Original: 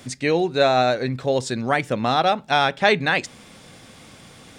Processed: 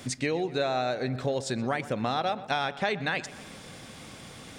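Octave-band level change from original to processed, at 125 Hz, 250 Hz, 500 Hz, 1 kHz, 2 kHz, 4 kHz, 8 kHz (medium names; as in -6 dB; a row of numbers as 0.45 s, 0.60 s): -6.0 dB, -7.0 dB, -9.0 dB, -9.5 dB, -9.5 dB, -9.5 dB, -3.5 dB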